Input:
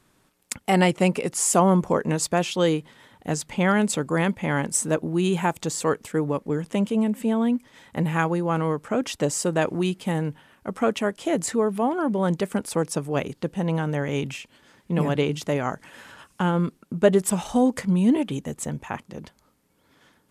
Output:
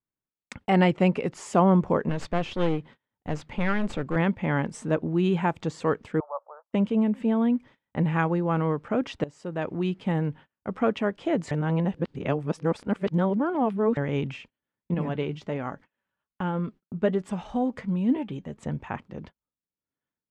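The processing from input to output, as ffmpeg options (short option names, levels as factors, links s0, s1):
-filter_complex "[0:a]asettb=1/sr,asplit=3[s0][s1][s2];[s0]atrim=end=2.094[s3];[s1]atrim=start=2.09:end=4.16,asetpts=PTS-STARTPTS,afade=t=in:d=0.004:c=qsin,afade=t=out:st=2.066:d=0.004:c=qsin,aeval=exprs='clip(val(0),-1,0.0237)':c=same[s4];[s2]atrim=start=4.156[s5];[s3][s4]acrossfade=d=0.004:c1=hsin:c2=qsin[s6];[s6][s5]acrossfade=d=0.004:c1=qsin:c2=hsin,asettb=1/sr,asplit=3[s7][s8][s9];[s7]atrim=end=6.204[s10];[s8]atrim=start=6.2:end=6.73,asetpts=PTS-STARTPTS,afade=t=in:d=0.004:c=qsin,afade=t=out:st=0.526:d=0.004:c=qsin,asuperpass=centerf=880:order=12:qfactor=1.1[s11];[s9]atrim=start=6.726[s12];[s10][s11]acrossfade=d=0.004:c1=hsin:c2=qsin[s13];[s13][s12]acrossfade=d=0.004:c1=qsin:c2=hsin,asettb=1/sr,asplit=3[s14][s15][s16];[s14]atrim=end=14.944[s17];[s15]atrim=start=14.94:end=18.63,asetpts=PTS-STARTPTS,afade=t=in:d=0.004:c=qsin,afade=t=out:st=3.686:d=0.004:c=qsin,flanger=delay=3.5:depth=1.9:regen=67:speed=1.3:shape=sinusoidal[s18];[s16]atrim=start=18.626[s19];[s17][s18]acrossfade=d=0.004:c1=hsin:c2=qsin[s20];[s20][s19]acrossfade=d=0.004:c1=qsin:c2=hsin,asplit=4[s21][s22][s23][s24];[s21]atrim=end=9.24,asetpts=PTS-STARTPTS,afade=t=out:st=9.236:d=0.004:c=hsin:silence=0.112202[s25];[s22]atrim=start=9.24:end=11.512,asetpts=PTS-STARTPTS,afade=t=in:d=0.8:silence=0.112202[s26];[s23]atrim=start=11.508:end=13.972,asetpts=PTS-STARTPTS,areverse[s27];[s24]atrim=start=13.968[s28];[s25][s26]concat=n=2:v=0:a=1[s29];[s29][s27]acrossfade=d=0.004:c1=hsin:c2=hsin[s30];[s30][s28]acrossfade=d=0.004:c1=hsin:c2=hsin,agate=range=0.0251:threshold=0.00708:ratio=16:detection=peak,lowpass=3000,lowshelf=f=190:g=4.5,volume=0.75"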